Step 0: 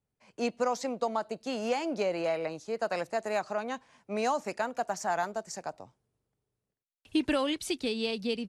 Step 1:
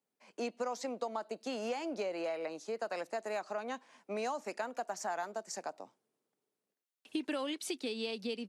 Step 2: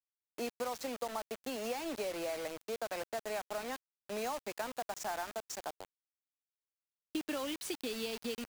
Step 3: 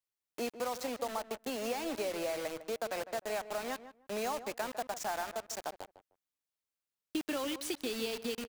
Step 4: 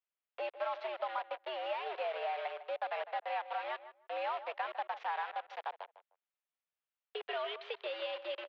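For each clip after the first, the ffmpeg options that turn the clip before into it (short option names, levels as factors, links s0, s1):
-af "highpass=f=220:w=0.5412,highpass=f=220:w=1.3066,acompressor=threshold=0.0141:ratio=2.5"
-af "acrusher=bits=6:mix=0:aa=0.000001,volume=0.841"
-filter_complex "[0:a]asplit=2[s0][s1];[s1]adelay=153,lowpass=f=1500:p=1,volume=0.251,asplit=2[s2][s3];[s3]adelay=153,lowpass=f=1500:p=1,volume=0.18[s4];[s0][s2][s4]amix=inputs=3:normalize=0,volume=1.26"
-af "acrusher=bits=3:mode=log:mix=0:aa=0.000001,highpass=f=380:t=q:w=0.5412,highpass=f=380:t=q:w=1.307,lowpass=f=3300:t=q:w=0.5176,lowpass=f=3300:t=q:w=0.7071,lowpass=f=3300:t=q:w=1.932,afreqshift=110"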